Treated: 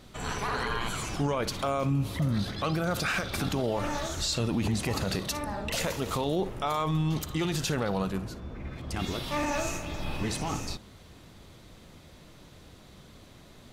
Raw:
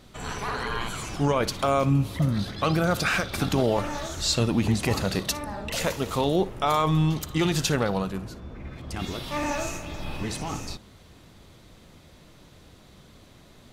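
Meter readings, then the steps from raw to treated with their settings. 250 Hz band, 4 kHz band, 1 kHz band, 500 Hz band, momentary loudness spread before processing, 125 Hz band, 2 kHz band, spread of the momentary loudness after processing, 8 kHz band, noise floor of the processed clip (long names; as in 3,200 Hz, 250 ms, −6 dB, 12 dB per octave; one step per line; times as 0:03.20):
−4.0 dB, −3.5 dB, −4.0 dB, −4.5 dB, 12 LU, −4.0 dB, −3.5 dB, 7 LU, −3.0 dB, −52 dBFS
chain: brickwall limiter −20 dBFS, peak gain reduction 8.5 dB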